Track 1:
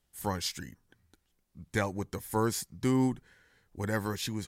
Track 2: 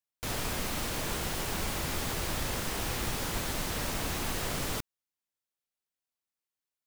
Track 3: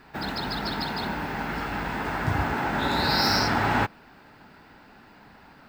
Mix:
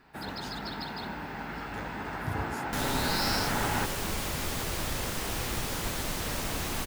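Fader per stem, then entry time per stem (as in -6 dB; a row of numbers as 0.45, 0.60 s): -14.0, +0.5, -7.5 dB; 0.00, 2.50, 0.00 s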